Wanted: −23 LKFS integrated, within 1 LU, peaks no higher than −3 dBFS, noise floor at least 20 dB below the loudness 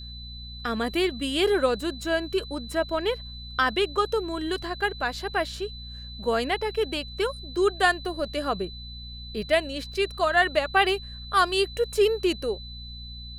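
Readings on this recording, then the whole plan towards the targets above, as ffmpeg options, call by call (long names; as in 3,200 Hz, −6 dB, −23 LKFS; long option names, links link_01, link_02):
mains hum 60 Hz; hum harmonics up to 240 Hz; level of the hum −39 dBFS; interfering tone 4,000 Hz; level of the tone −41 dBFS; integrated loudness −26.0 LKFS; sample peak −8.0 dBFS; target loudness −23.0 LKFS
→ -af "bandreject=frequency=60:width_type=h:width=4,bandreject=frequency=120:width_type=h:width=4,bandreject=frequency=180:width_type=h:width=4,bandreject=frequency=240:width_type=h:width=4"
-af "bandreject=frequency=4000:width=30"
-af "volume=3dB"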